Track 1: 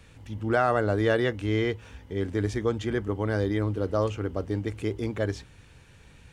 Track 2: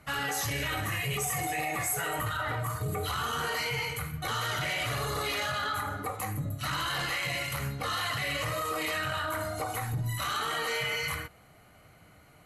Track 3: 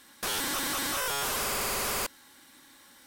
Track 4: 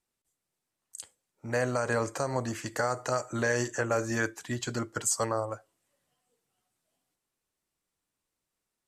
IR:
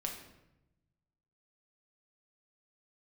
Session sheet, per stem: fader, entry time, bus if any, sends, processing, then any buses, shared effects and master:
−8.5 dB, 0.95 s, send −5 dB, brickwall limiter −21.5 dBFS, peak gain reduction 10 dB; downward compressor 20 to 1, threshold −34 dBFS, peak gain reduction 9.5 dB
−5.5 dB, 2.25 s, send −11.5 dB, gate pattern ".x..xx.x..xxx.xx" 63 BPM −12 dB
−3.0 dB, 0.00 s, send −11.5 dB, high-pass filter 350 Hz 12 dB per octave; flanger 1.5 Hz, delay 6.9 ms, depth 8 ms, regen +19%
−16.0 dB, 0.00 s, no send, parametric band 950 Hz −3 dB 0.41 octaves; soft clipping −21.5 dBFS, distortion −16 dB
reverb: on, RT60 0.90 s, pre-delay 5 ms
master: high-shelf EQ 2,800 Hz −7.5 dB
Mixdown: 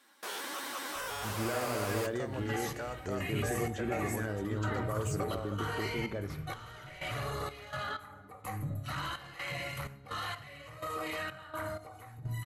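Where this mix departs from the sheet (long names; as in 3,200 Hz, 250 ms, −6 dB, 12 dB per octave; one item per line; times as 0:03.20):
stem 1: missing downward compressor 20 to 1, threshold −34 dBFS, peak gain reduction 9.5 dB
stem 4 −16.0 dB → −8.0 dB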